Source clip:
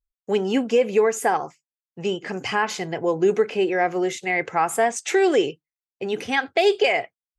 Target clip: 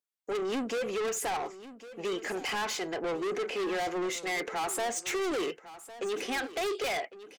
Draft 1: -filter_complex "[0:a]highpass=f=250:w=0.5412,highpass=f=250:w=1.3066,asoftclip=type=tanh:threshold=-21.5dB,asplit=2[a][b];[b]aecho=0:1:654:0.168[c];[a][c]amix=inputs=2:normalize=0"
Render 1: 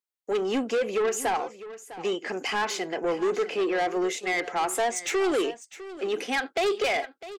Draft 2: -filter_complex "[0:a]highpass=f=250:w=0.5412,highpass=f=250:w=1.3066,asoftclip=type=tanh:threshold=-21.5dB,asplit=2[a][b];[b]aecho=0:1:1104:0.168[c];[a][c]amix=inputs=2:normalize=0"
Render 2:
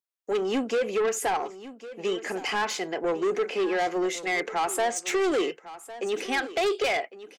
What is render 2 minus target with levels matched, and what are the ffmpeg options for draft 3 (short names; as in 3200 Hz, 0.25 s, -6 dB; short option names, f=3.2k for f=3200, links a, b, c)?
soft clip: distortion -5 dB
-filter_complex "[0:a]highpass=f=250:w=0.5412,highpass=f=250:w=1.3066,asoftclip=type=tanh:threshold=-29.5dB,asplit=2[a][b];[b]aecho=0:1:1104:0.168[c];[a][c]amix=inputs=2:normalize=0"